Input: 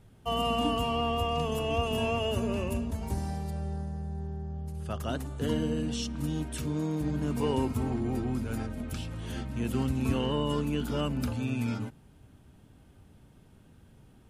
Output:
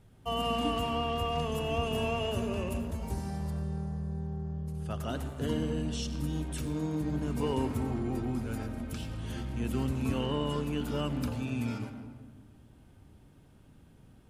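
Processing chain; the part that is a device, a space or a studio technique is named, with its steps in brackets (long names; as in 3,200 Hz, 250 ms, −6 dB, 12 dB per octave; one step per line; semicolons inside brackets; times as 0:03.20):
saturated reverb return (on a send at −5 dB: convolution reverb RT60 1.3 s, pre-delay 81 ms + soft clipping −31 dBFS, distortion −9 dB)
on the sum: level −2.5 dB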